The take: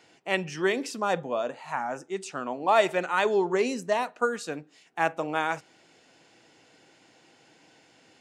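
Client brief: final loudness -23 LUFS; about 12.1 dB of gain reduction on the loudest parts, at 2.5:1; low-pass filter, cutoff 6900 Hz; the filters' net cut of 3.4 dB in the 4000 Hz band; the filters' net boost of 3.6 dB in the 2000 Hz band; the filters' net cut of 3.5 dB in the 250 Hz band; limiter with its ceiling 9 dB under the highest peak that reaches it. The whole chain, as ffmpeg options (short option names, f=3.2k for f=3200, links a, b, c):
-af "lowpass=6.9k,equalizer=f=250:t=o:g=-5.5,equalizer=f=2k:t=o:g=6.5,equalizer=f=4k:t=o:g=-7.5,acompressor=threshold=-34dB:ratio=2.5,volume=16.5dB,alimiter=limit=-11dB:level=0:latency=1"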